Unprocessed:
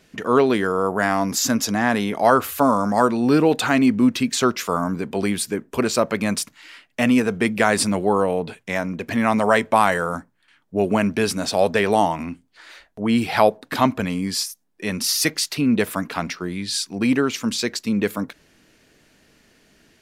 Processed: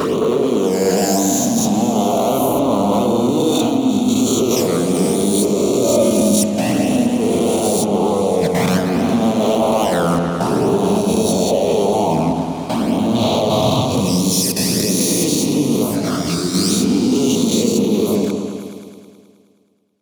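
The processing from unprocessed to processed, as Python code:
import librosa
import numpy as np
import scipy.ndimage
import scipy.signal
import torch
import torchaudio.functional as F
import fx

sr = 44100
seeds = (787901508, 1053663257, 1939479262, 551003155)

y = fx.spec_swells(x, sr, rise_s=1.96)
y = fx.leveller(y, sr, passes=5)
y = scipy.signal.sosfilt(scipy.signal.butter(2, 84.0, 'highpass', fs=sr, output='sos'), y)
y = fx.peak_eq(y, sr, hz=1900.0, db=-14.0, octaves=1.1)
y = fx.env_flanger(y, sr, rest_ms=6.8, full_db=-2.5)
y = fx.graphic_eq(y, sr, hz=(125, 250, 4000), db=(10, -6, 9), at=(13.15, 13.95))
y = fx.level_steps(y, sr, step_db=16)
y = fx.comb(y, sr, ms=3.3, depth=0.76, at=(5.84, 6.29))
y = fx.echo_opening(y, sr, ms=106, hz=750, octaves=1, feedback_pct=70, wet_db=-3)
y = fx.detune_double(y, sr, cents=26, at=(15.83, 16.53), fade=0.02)
y = y * 10.0 ** (-2.0 / 20.0)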